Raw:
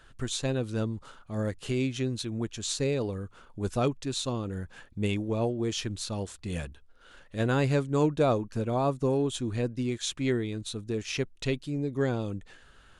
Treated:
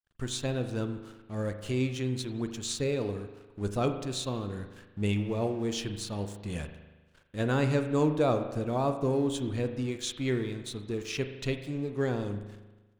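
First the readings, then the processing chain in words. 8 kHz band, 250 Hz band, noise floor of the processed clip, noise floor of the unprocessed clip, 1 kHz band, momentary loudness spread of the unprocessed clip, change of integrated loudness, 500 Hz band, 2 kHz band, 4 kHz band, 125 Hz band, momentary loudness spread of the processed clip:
-2.5 dB, -1.0 dB, -60 dBFS, -56 dBFS, -1.0 dB, 10 LU, -1.0 dB, -1.0 dB, -1.0 dB, -2.0 dB, -1.5 dB, 11 LU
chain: crossover distortion -51.5 dBFS; expander -56 dBFS; spring tank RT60 1.2 s, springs 39 ms, chirp 60 ms, DRR 7.5 dB; trim -1.5 dB

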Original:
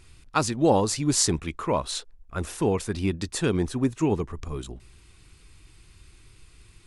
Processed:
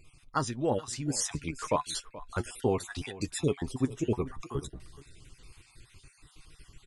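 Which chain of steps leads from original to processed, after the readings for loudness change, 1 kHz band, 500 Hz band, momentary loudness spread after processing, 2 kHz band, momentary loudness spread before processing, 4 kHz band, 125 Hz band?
-7.0 dB, -6.0 dB, -6.0 dB, 8 LU, -6.0 dB, 13 LU, -7.5 dB, -6.0 dB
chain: random holes in the spectrogram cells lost 40%; flange 0.62 Hz, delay 6.3 ms, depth 2.2 ms, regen +48%; delay 428 ms -19.5 dB; gain riding within 5 dB 0.5 s

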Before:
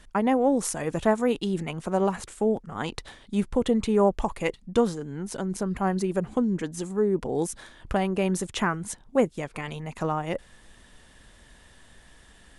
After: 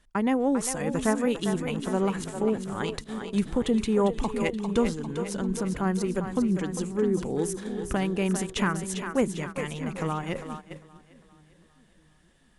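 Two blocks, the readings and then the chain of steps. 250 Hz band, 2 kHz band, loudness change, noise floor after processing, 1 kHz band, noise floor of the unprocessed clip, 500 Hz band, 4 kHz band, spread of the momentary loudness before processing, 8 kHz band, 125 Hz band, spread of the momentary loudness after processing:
+0.5 dB, +0.5 dB, -1.0 dB, -61 dBFS, -3.0 dB, -54 dBFS, -2.5 dB, +0.5 dB, 11 LU, +1.0 dB, +0.5 dB, 8 LU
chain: dynamic bell 670 Hz, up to -7 dB, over -40 dBFS, Q 1.5; two-band feedback delay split 330 Hz, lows 651 ms, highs 400 ms, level -7.5 dB; gate -35 dBFS, range -12 dB

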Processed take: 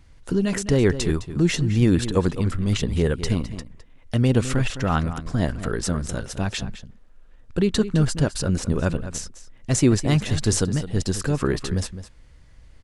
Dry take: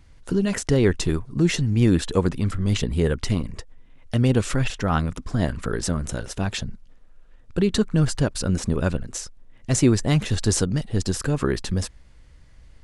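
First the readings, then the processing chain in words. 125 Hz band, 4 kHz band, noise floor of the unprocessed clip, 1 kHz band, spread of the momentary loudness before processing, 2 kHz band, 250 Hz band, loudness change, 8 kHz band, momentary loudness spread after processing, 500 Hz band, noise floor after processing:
+0.5 dB, 0.0 dB, -50 dBFS, 0.0 dB, 11 LU, +0.5 dB, +0.5 dB, 0.0 dB, 0.0 dB, 11 LU, +0.5 dB, -49 dBFS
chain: echo from a far wall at 36 m, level -12 dB

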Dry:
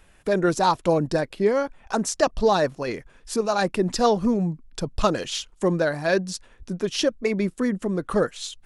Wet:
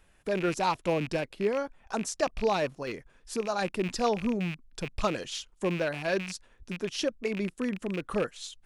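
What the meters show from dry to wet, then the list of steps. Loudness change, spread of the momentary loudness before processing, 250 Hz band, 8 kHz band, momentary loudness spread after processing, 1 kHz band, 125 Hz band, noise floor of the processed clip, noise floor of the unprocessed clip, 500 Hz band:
-7.0 dB, 9 LU, -7.5 dB, -7.5 dB, 10 LU, -7.5 dB, -7.5 dB, -63 dBFS, -56 dBFS, -7.5 dB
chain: rattle on loud lows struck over -33 dBFS, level -20 dBFS; trim -7.5 dB

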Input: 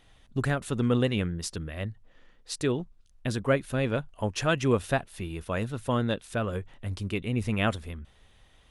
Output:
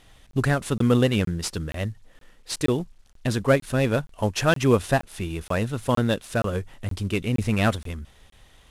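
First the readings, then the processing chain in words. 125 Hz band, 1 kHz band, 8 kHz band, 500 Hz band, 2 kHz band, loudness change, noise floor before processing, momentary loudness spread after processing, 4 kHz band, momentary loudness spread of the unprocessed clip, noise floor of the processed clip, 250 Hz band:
+5.5 dB, +5.0 dB, +5.5 dB, +5.0 dB, +4.5 dB, +5.0 dB, -60 dBFS, 12 LU, +4.5 dB, 12 LU, -55 dBFS, +5.0 dB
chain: CVSD coder 64 kbps; crackling interface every 0.47 s, samples 1024, zero, from 0.31 s; trim +5.5 dB

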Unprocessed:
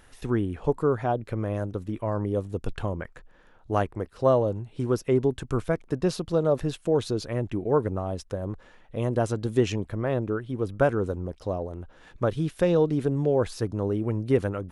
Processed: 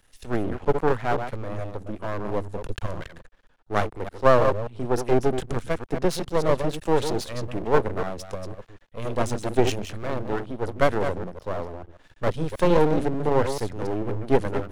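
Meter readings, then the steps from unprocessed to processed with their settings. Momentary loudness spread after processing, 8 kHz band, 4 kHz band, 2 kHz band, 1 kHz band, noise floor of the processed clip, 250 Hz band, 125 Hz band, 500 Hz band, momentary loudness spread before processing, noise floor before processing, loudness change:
13 LU, +4.5 dB, +4.5 dB, +5.5 dB, +6.0 dB, -58 dBFS, -0.5 dB, -2.0 dB, +1.0 dB, 9 LU, -55 dBFS, +1.0 dB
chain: chunks repeated in reverse 146 ms, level -7 dB; half-wave rectifier; three bands expanded up and down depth 40%; trim +5.5 dB

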